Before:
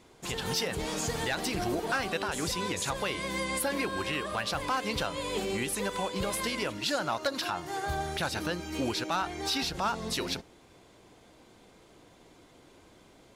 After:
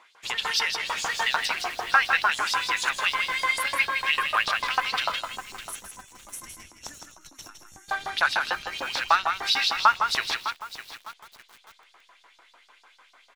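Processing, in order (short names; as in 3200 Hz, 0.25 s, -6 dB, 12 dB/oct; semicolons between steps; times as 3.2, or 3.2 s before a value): spectral gain 5.21–7.89, 370–5400 Hz -23 dB; LFO high-pass saw up 6.7 Hz 870–5500 Hz; in parallel at -5 dB: backlash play -33 dBFS; on the sum: tone controls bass +3 dB, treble -11 dB; on a send: echo 0.161 s -6.5 dB; on the sum: lo-fi delay 0.606 s, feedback 35%, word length 7-bit, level -12.5 dB; gain +4.5 dB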